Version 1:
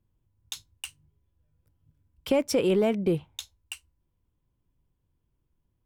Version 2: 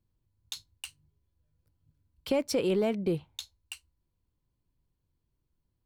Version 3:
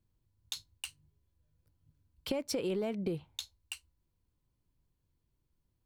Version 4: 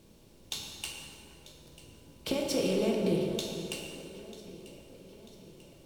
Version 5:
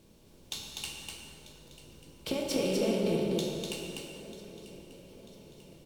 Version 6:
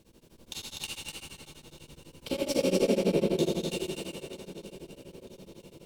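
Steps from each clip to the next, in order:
parametric band 4,300 Hz +9.5 dB 0.22 octaves; level −4 dB
downward compressor 6 to 1, threshold −31 dBFS, peak gain reduction 8 dB
compressor on every frequency bin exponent 0.6; delay that swaps between a low-pass and a high-pass 471 ms, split 2,000 Hz, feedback 71%, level −14 dB; dense smooth reverb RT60 2.5 s, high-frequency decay 0.6×, DRR −1 dB
single-tap delay 248 ms −3.5 dB; level −1.5 dB
dense smooth reverb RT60 2 s, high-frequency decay 0.75×, DRR −1 dB; tremolo along a rectified sine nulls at 12 Hz; level +1.5 dB

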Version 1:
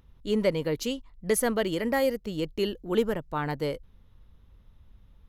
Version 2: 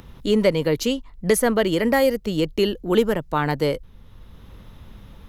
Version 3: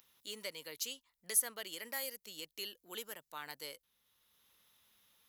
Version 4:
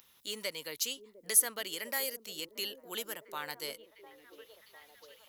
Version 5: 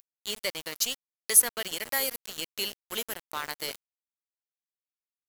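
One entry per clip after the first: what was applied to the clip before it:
multiband upward and downward compressor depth 40%; level +7.5 dB
first difference; level −7 dB
echo through a band-pass that steps 703 ms, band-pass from 320 Hz, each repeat 0.7 octaves, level −8 dB; level +6 dB
centre clipping without the shift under −38.5 dBFS; level +6 dB

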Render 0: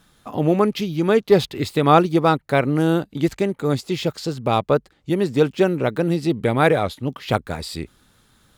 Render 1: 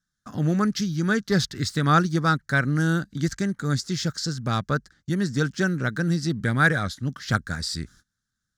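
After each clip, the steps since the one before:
noise gate −47 dBFS, range −25 dB
drawn EQ curve 200 Hz 0 dB, 420 Hz −13 dB, 940 Hz −13 dB, 1,600 Hz +7 dB, 2,500 Hz −13 dB, 5,800 Hz +9 dB, 12,000 Hz −7 dB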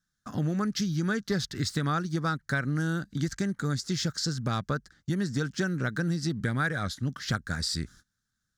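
downward compressor 6 to 1, threshold −25 dBFS, peak gain reduction 11.5 dB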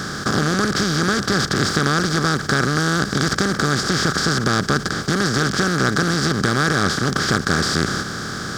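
compressor on every frequency bin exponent 0.2
level +2.5 dB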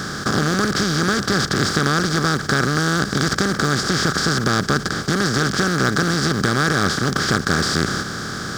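floating-point word with a short mantissa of 4 bits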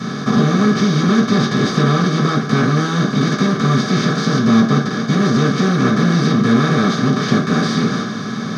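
mid-hump overdrive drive 10 dB, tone 3,800 Hz, clips at −1 dBFS
convolution reverb RT60 0.45 s, pre-delay 3 ms, DRR −7 dB
level −16 dB

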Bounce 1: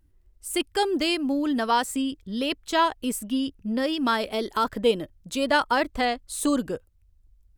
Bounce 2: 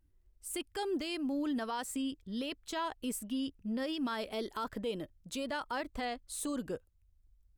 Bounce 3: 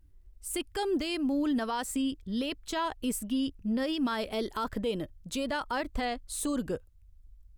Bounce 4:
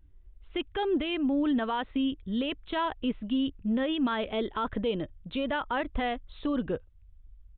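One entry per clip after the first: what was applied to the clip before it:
brickwall limiter −20 dBFS, peak gain reduction 9.5 dB; level −8 dB
low-shelf EQ 110 Hz +8.5 dB; level +4.5 dB
downsampling to 8,000 Hz; level +2 dB

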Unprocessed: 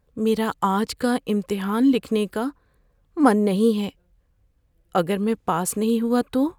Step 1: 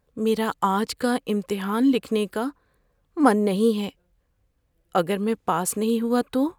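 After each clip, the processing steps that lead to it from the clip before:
low-shelf EQ 160 Hz −6.5 dB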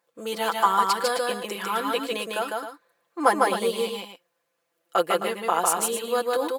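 high-pass filter 540 Hz 12 dB per octave
comb filter 5.9 ms, depth 75%
on a send: loudspeakers that aren't time-aligned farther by 52 metres −2 dB, 90 metres −10 dB

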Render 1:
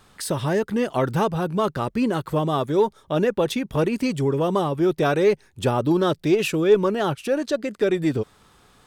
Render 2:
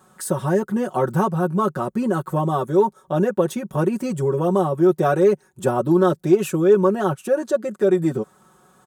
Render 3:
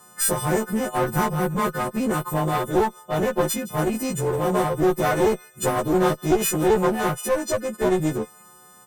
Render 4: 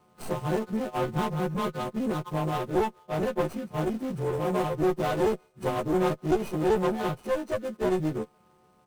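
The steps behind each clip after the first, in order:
high-pass filter 110 Hz 12 dB per octave; flat-topped bell 3,200 Hz −11 dB; comb filter 5.4 ms, depth 77%
every partial snapped to a pitch grid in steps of 3 semitones; delay with a high-pass on its return 164 ms, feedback 48%, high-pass 2,100 Hz, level −17.5 dB; asymmetric clip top −24.5 dBFS
running median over 25 samples; level −5 dB

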